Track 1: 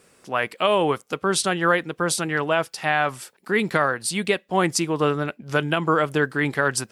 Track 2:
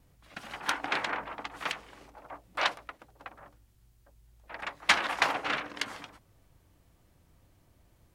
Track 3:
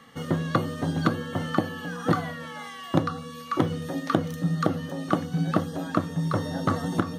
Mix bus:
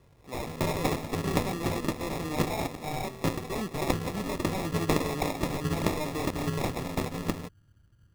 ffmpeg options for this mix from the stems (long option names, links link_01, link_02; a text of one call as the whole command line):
ffmpeg -i stem1.wav -i stem2.wav -i stem3.wav -filter_complex "[0:a]aeval=exprs='0.106*(abs(mod(val(0)/0.106+3,4)-2)-1)':channel_layout=same,volume=-7.5dB[link_01];[1:a]equalizer=frequency=110:width=1:gain=10.5,adynamicsmooth=sensitivity=1.5:basefreq=510,volume=-3.5dB[link_02];[2:a]tremolo=f=260:d=0.919,adelay=300,volume=-1.5dB[link_03];[link_01][link_02][link_03]amix=inputs=3:normalize=0,acrusher=samples=29:mix=1:aa=0.000001" out.wav